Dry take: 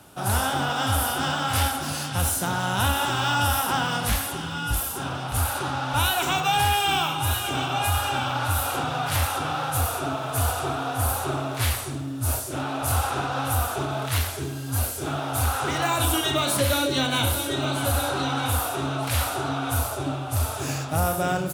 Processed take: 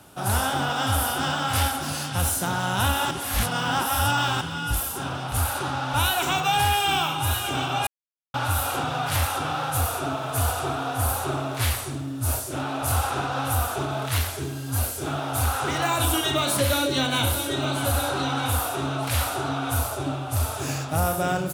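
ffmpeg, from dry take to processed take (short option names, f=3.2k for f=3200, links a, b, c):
-filter_complex "[0:a]asplit=5[a][b][c][d][e];[a]atrim=end=3.112[f];[b]atrim=start=3.108:end=4.412,asetpts=PTS-STARTPTS,areverse[g];[c]atrim=start=4.408:end=7.87,asetpts=PTS-STARTPTS,afade=t=out:st=3.458:d=0.004:c=hsin[h];[d]atrim=start=7.87:end=8.34,asetpts=PTS-STARTPTS,volume=0[i];[e]atrim=start=8.34,asetpts=PTS-STARTPTS,afade=t=in:d=0.004:c=hsin[j];[f][g]acrossfade=d=0.004:c1=hsin:c2=hsin[k];[h][i][j]concat=n=3:v=0:a=1[l];[k][l]acrossfade=d=0.004:c1=hsin:c2=hsin"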